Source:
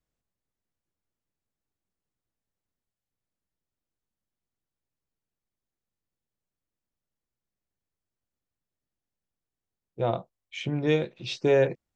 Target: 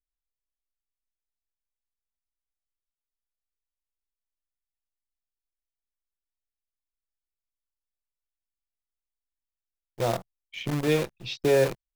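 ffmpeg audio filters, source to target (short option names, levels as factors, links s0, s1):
-filter_complex "[0:a]anlmdn=0.0398,lowpass=5700,acrossover=split=130|1500[s0][s1][s2];[s1]acrusher=bits=6:dc=4:mix=0:aa=0.000001[s3];[s0][s3][s2]amix=inputs=3:normalize=0"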